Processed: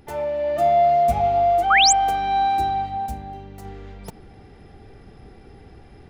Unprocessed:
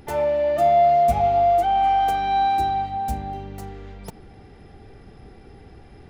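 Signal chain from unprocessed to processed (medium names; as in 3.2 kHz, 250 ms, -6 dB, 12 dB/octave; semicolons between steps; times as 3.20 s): level rider gain up to 4.5 dB; 1.70–1.93 s: painted sound rise 1.1–8.5 kHz -11 dBFS; 3.06–3.65 s: feedback comb 330 Hz, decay 0.29 s, mix 40%; trim -4.5 dB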